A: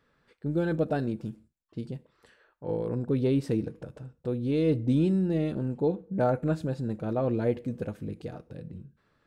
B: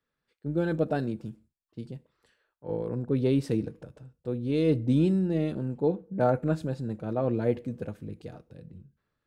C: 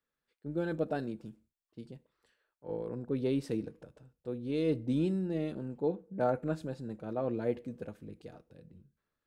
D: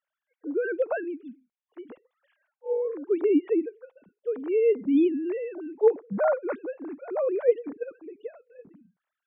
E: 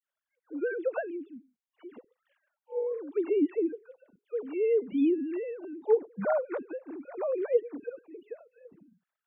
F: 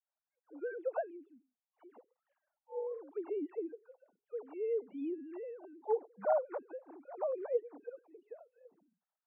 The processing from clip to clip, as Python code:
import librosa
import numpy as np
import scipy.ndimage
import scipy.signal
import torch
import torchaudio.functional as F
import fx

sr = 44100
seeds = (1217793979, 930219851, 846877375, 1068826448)

y1 = fx.band_widen(x, sr, depth_pct=40)
y2 = fx.peak_eq(y1, sr, hz=110.0, db=-6.0, octaves=1.4)
y2 = y2 * librosa.db_to_amplitude(-5.0)
y3 = fx.sine_speech(y2, sr)
y3 = y3 * librosa.db_to_amplitude(8.0)
y4 = fx.dispersion(y3, sr, late='lows', ms=71.0, hz=1300.0)
y4 = y4 * librosa.db_to_amplitude(-4.0)
y5 = fx.bandpass_q(y4, sr, hz=780.0, q=2.6)
y5 = y5 * librosa.db_to_amplitude(1.0)